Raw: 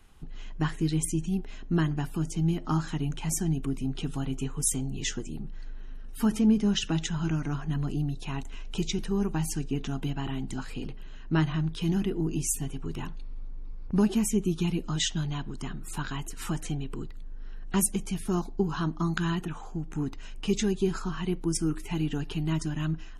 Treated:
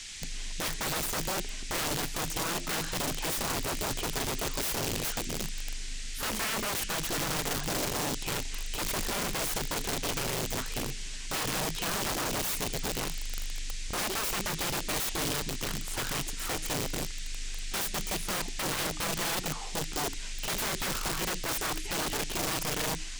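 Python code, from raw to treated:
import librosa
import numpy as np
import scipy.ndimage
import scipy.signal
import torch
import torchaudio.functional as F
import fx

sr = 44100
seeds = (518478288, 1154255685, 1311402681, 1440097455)

y = fx.dmg_noise_band(x, sr, seeds[0], low_hz=1800.0, high_hz=8100.0, level_db=-45.0)
y = (np.mod(10.0 ** (28.0 / 20.0) * y + 1.0, 2.0) - 1.0) / 10.0 ** (28.0 / 20.0)
y = y * librosa.db_to_amplitude(1.5)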